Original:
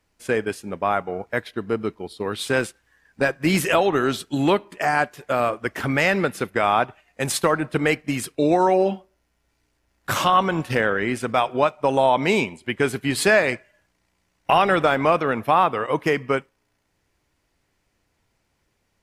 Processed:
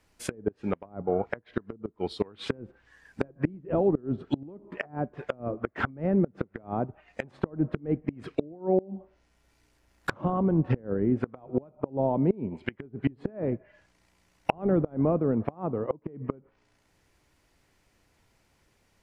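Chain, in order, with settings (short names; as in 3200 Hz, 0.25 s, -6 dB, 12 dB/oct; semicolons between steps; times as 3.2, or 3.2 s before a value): treble ducked by the level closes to 330 Hz, closed at -19 dBFS; flipped gate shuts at -16 dBFS, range -25 dB; gain +3 dB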